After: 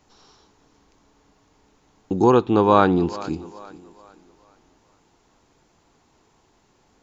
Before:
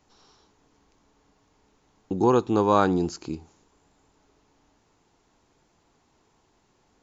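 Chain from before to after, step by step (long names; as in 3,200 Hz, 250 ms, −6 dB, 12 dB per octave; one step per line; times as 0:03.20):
0:02.31–0:03.21: high shelf with overshoot 4,500 Hz −9.5 dB, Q 1.5
on a send: feedback echo with a high-pass in the loop 428 ms, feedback 39%, high-pass 170 Hz, level −17.5 dB
on the sum: level +4.5 dB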